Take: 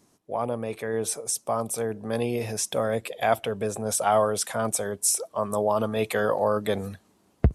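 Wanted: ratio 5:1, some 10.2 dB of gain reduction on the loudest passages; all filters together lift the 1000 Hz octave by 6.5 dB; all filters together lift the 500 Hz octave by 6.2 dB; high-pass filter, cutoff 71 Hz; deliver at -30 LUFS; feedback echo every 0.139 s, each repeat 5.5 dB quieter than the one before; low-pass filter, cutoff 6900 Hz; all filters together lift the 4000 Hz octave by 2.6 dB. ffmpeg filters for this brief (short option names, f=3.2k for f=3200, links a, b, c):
-af "highpass=71,lowpass=6.9k,equalizer=f=500:t=o:g=5.5,equalizer=f=1k:t=o:g=6.5,equalizer=f=4k:t=o:g=4,acompressor=threshold=-22dB:ratio=5,aecho=1:1:139|278|417|556|695|834|973:0.531|0.281|0.149|0.079|0.0419|0.0222|0.0118,volume=-4dB"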